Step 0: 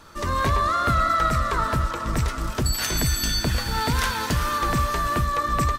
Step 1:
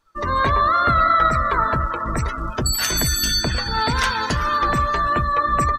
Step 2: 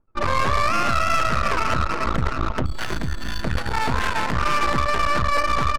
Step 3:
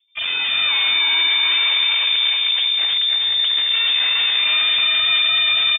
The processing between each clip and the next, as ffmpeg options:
-af "afftdn=nr=26:nf=-33,lowshelf=f=390:g=-6.5,volume=6dB"
-af "alimiter=limit=-16.5dB:level=0:latency=1:release=98,aeval=exprs='max(val(0),0)':c=same,adynamicsmooth=sensitivity=3.5:basefreq=540,volume=8dB"
-filter_complex "[0:a]volume=15dB,asoftclip=hard,volume=-15dB,asplit=2[a][b];[b]aecho=0:1:311|622|933|1244|1555:0.631|0.252|0.101|0.0404|0.0162[c];[a][c]amix=inputs=2:normalize=0,lowpass=f=3.1k:t=q:w=0.5098,lowpass=f=3.1k:t=q:w=0.6013,lowpass=f=3.1k:t=q:w=0.9,lowpass=f=3.1k:t=q:w=2.563,afreqshift=-3600"

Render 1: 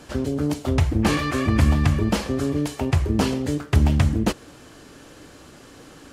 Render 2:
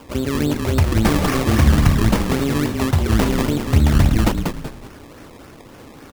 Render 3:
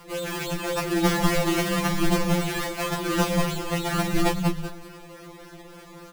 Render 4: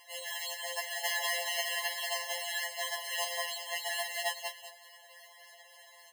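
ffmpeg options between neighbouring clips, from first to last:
-filter_complex "[0:a]asplit=6[a][b][c][d][e][f];[b]adelay=189,afreqshift=-31,volume=-4.5dB[g];[c]adelay=378,afreqshift=-62,volume=-12.5dB[h];[d]adelay=567,afreqshift=-93,volume=-20.4dB[i];[e]adelay=756,afreqshift=-124,volume=-28.4dB[j];[f]adelay=945,afreqshift=-155,volume=-36.3dB[k];[a][g][h][i][j][k]amix=inputs=6:normalize=0,acrusher=samples=21:mix=1:aa=0.000001:lfo=1:lforange=21:lforate=3.6,volume=3dB"
-af "afftfilt=real='re*2.83*eq(mod(b,8),0)':imag='im*2.83*eq(mod(b,8),0)':win_size=2048:overlap=0.75"
-af "equalizer=f=890:t=o:w=0.73:g=-13,afftfilt=real='re*eq(mod(floor(b*sr/1024/550),2),1)':imag='im*eq(mod(floor(b*sr/1024/550),2),1)':win_size=1024:overlap=0.75"

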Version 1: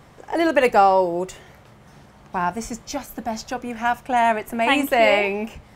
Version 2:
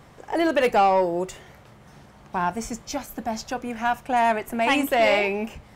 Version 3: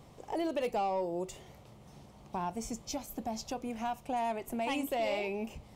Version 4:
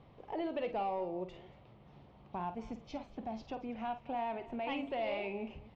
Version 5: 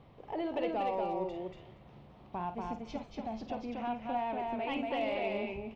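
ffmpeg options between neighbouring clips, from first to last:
-af "asoftclip=type=tanh:threshold=-10.5dB,volume=-1dB"
-af "equalizer=f=1.6k:t=o:w=0.77:g=-12.5,acompressor=threshold=-31dB:ratio=2,volume=-4.5dB"
-filter_complex "[0:a]lowpass=f=3.5k:w=0.5412,lowpass=f=3.5k:w=1.3066,asplit=2[a][b];[b]aecho=0:1:50|234:0.282|0.119[c];[a][c]amix=inputs=2:normalize=0,volume=-4dB"
-af "asoftclip=type=hard:threshold=-28.5dB,aecho=1:1:237:0.708,volume=1.5dB"

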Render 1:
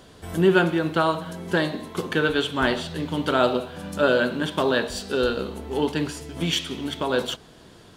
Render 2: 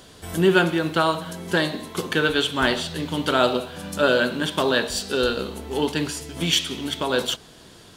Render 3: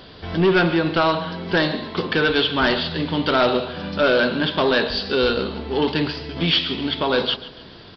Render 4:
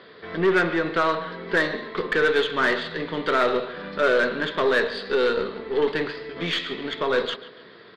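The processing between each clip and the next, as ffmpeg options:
-af "highshelf=f=2.6k:g=7.5"
-af "aresample=11025,asoftclip=type=tanh:threshold=-16.5dB,aresample=44100,aecho=1:1:141|282|423:0.15|0.0598|0.0239,volume=5dB"
-af "highpass=220,equalizer=f=280:t=q:w=4:g=-4,equalizer=f=440:t=q:w=4:g=7,equalizer=f=810:t=q:w=4:g=-6,equalizer=f=1.2k:t=q:w=4:g=5,equalizer=f=1.9k:t=q:w=4:g=9,equalizer=f=2.9k:t=q:w=4:g=-7,lowpass=f=4k:w=0.5412,lowpass=f=4k:w=1.3066,aeval=exprs='0.631*(cos(1*acos(clip(val(0)/0.631,-1,1)))-cos(1*PI/2))+0.02*(cos(8*acos(clip(val(0)/0.631,-1,1)))-cos(8*PI/2))':c=same,volume=-4.5dB"

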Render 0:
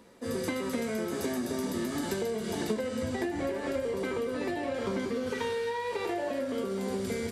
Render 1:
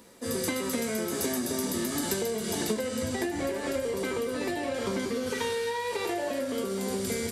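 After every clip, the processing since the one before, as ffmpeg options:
-af "highshelf=f=4.6k:g=11.5,volume=1dB"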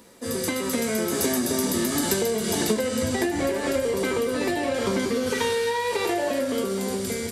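-af "dynaudnorm=f=210:g=7:m=3.5dB,volume=2.5dB"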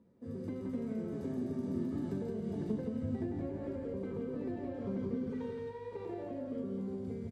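-filter_complex "[0:a]bandpass=f=130:t=q:w=1.2:csg=0,asplit=2[a][b];[b]aecho=0:1:171:0.631[c];[a][c]amix=inputs=2:normalize=0,volume=-5.5dB"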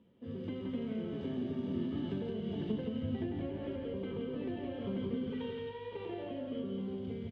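-af "lowpass=f=3.1k:t=q:w=10"

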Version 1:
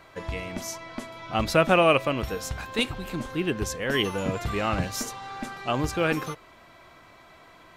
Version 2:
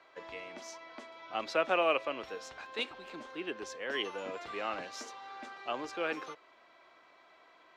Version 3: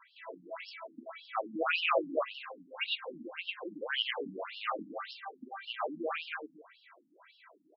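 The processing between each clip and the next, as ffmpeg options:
-filter_complex "[0:a]acrossover=split=290 6300:gain=0.0708 1 0.0631[a][b][c];[a][b][c]amix=inputs=3:normalize=0,acrossover=split=190|5100[d][e][f];[d]alimiter=level_in=23.5dB:limit=-24dB:level=0:latency=1:release=471,volume=-23.5dB[g];[g][e][f]amix=inputs=3:normalize=0,volume=-8.5dB"
-af "aecho=1:1:110.8|268.2:0.794|0.501,afftfilt=real='re*between(b*sr/1024,210*pow(3900/210,0.5+0.5*sin(2*PI*1.8*pts/sr))/1.41,210*pow(3900/210,0.5+0.5*sin(2*PI*1.8*pts/sr))*1.41)':imag='im*between(b*sr/1024,210*pow(3900/210,0.5+0.5*sin(2*PI*1.8*pts/sr))/1.41,210*pow(3900/210,0.5+0.5*sin(2*PI*1.8*pts/sr))*1.41)':win_size=1024:overlap=0.75,volume=5.5dB"

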